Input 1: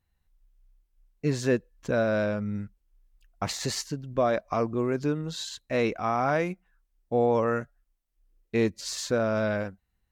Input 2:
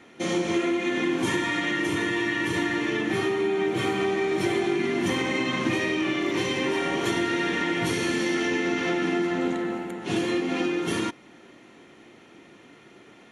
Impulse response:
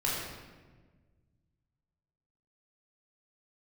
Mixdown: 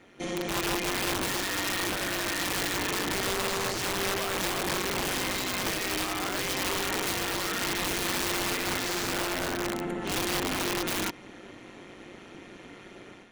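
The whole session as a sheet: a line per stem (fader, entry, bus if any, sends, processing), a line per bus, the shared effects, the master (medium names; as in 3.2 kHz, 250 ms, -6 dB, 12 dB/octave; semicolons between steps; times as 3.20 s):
+2.0 dB, 0.00 s, no send, high-pass 1.1 kHz 12 dB/octave
-2.0 dB, 0.00 s, no send, level rider gain up to 9 dB; AM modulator 190 Hz, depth 55%; integer overflow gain 15 dB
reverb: none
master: peak limiter -23 dBFS, peak gain reduction 11 dB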